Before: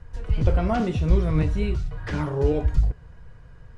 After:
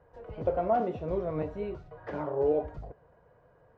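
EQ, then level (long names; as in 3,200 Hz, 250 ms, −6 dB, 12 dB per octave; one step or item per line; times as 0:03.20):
resonant band-pass 610 Hz, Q 2
+2.5 dB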